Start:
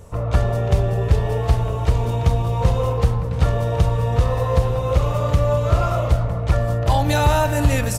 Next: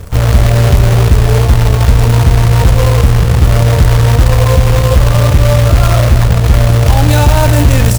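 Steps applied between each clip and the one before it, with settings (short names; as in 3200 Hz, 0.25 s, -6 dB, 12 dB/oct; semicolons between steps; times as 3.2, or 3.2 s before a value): low shelf 210 Hz +11.5 dB; in parallel at -2 dB: negative-ratio compressor -13 dBFS, ratio -1; on the sum: companded quantiser 4-bit; gain -1 dB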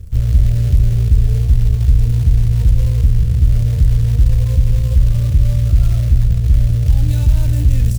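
passive tone stack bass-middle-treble 10-0-1; gain +4.5 dB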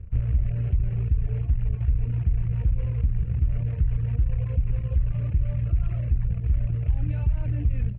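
reverb removal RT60 1.1 s; elliptic low-pass 2600 Hz, stop band 60 dB; compressor, threshold -11 dBFS, peak gain reduction 5 dB; gain -6 dB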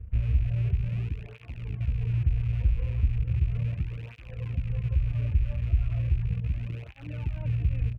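rattling part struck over -27 dBFS, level -36 dBFS; tape flanging out of phase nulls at 0.36 Hz, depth 7.5 ms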